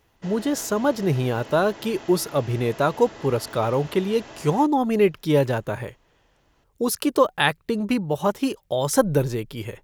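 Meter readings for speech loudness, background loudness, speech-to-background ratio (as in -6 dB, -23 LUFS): -23.0 LUFS, -41.5 LUFS, 18.5 dB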